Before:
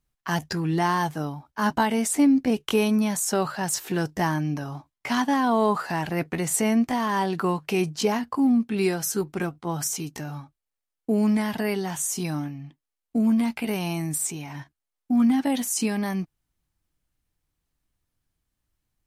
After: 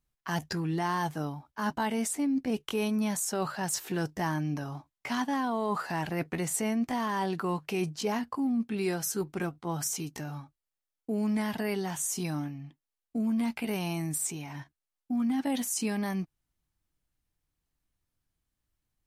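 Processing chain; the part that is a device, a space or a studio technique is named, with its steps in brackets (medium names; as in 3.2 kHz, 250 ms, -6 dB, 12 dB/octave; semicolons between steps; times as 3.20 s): compression on the reversed sound (reverse; compression, threshold -22 dBFS, peak gain reduction 7 dB; reverse); trim -4 dB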